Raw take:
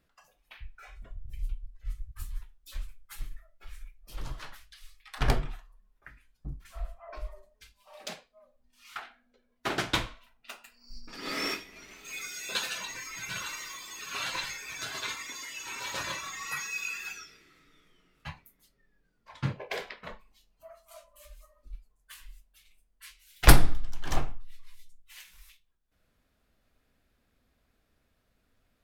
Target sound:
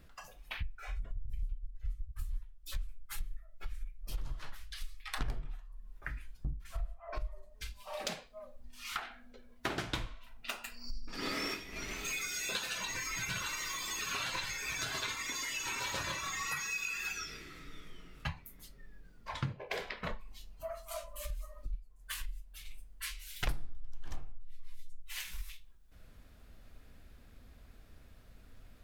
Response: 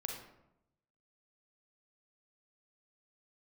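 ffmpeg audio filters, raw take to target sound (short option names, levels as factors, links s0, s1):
-af "lowshelf=f=120:g=10.5,acompressor=threshold=0.00562:ratio=6,volume=2.99"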